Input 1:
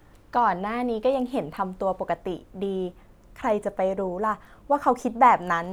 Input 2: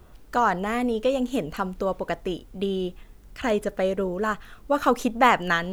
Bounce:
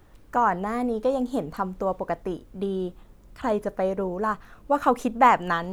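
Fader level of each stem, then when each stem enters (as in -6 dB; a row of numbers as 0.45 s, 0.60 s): -4.0 dB, -7.0 dB; 0.00 s, 0.00 s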